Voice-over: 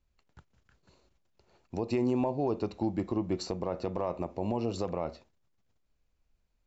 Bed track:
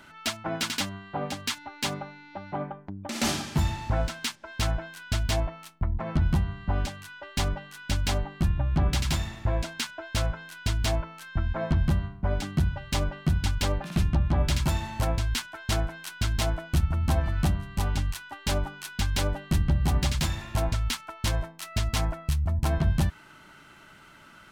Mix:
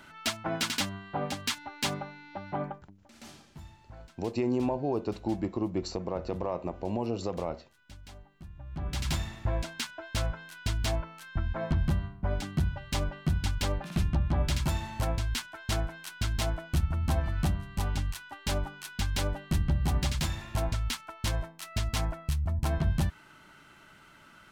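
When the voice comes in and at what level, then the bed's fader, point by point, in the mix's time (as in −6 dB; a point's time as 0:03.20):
2.45 s, 0.0 dB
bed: 0:02.71 −1 dB
0:02.99 −22.5 dB
0:08.50 −22.5 dB
0:09.07 −3.5 dB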